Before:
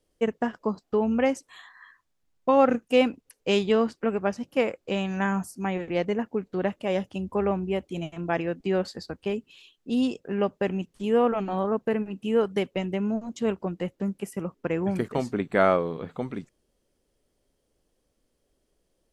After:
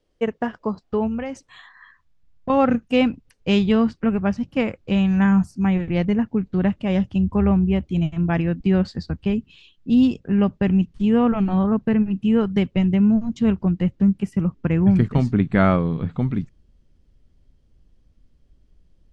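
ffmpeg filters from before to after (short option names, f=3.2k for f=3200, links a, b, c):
-filter_complex "[0:a]asettb=1/sr,asplit=3[a][b][c];[a]atrim=end=1.074[d];[b]atrim=start=1.07:end=2.5,asetpts=PTS-STARTPTS,afade=t=in:d=0.004:c=qsin,afade=t=out:st=1.426:d=0.004:c=qsin,acompressor=threshold=-27dB:ratio=6:attack=3.2:release=140:knee=1:detection=peak[e];[c]atrim=start=2.496[f];[d][e]acrossfade=d=0.004:c1=hsin:c2=qsin[g];[g][f]acrossfade=d=0.004:c1=qsin:c2=hsin,lowpass=5k,asubboost=boost=8.5:cutoff=160,volume=3dB"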